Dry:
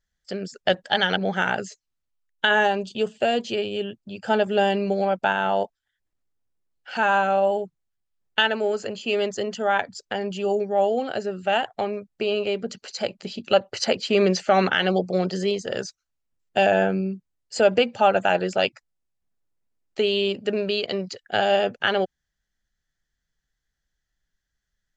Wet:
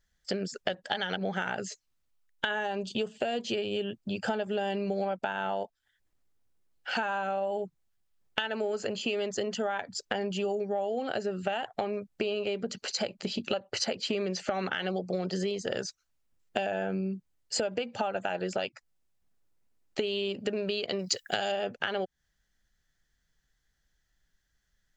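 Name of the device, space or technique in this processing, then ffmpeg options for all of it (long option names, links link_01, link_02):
serial compression, leveller first: -filter_complex "[0:a]acompressor=threshold=-22dB:ratio=2.5,acompressor=threshold=-33dB:ratio=6,asettb=1/sr,asplit=3[link_01][link_02][link_03];[link_01]atrim=end=20.994[link_04];[link_02]atrim=start=20.99:end=21.52,asetpts=PTS-STARTPTS,afade=type=in:duration=0.004:curve=qsin,afade=type=out:start_time=0.526:duration=0.004:curve=qsin,aemphasis=mode=production:type=75fm[link_05];[link_03]atrim=start=21.516[link_06];[link_04][link_05]acrossfade=duration=0.004:curve1=hsin:curve2=qsin[link_07];[link_07][link_06]acrossfade=duration=0.004:curve1=qsin:curve2=hsin,volume=4.5dB"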